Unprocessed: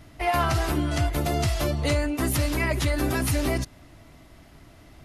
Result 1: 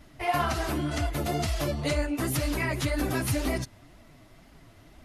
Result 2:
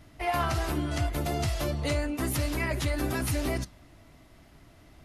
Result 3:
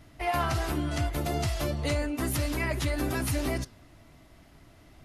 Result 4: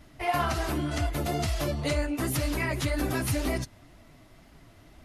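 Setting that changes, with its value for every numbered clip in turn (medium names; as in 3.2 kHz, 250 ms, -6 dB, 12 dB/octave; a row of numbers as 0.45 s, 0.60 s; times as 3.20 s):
flange, regen: -1%, -88%, +90%, -22%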